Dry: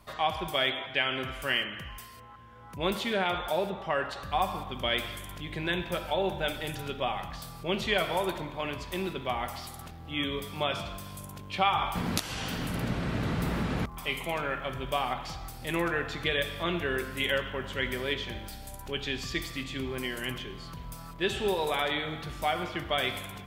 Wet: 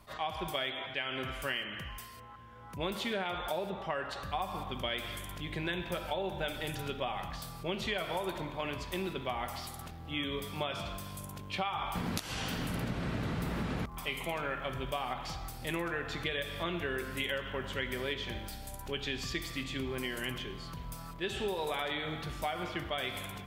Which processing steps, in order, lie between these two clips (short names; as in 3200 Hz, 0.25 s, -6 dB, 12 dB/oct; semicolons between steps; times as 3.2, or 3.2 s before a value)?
compressor, threshold -30 dBFS, peak gain reduction 10 dB; attack slew limiter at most 290 dB/s; gain -1 dB